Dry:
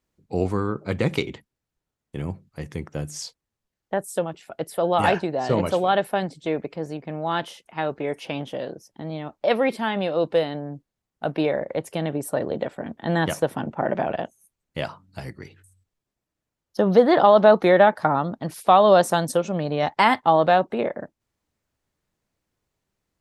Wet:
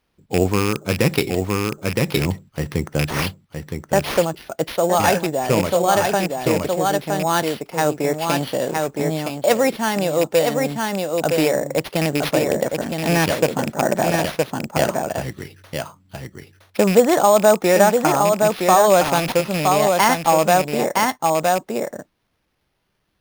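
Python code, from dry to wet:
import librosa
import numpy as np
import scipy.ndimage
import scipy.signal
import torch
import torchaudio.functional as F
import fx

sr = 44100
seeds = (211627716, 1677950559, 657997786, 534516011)

p1 = fx.rattle_buzz(x, sr, strikes_db=-26.0, level_db=-19.0)
p2 = fx.high_shelf(p1, sr, hz=9000.0, db=8.0)
p3 = p2 + fx.echo_single(p2, sr, ms=966, db=-5.0, dry=0)
p4 = fx.sample_hold(p3, sr, seeds[0], rate_hz=7600.0, jitter_pct=0)
p5 = fx.rider(p4, sr, range_db=10, speed_s=0.5)
p6 = p4 + F.gain(torch.from_numpy(p5), -1.0).numpy()
y = F.gain(torch.from_numpy(p6), -2.5).numpy()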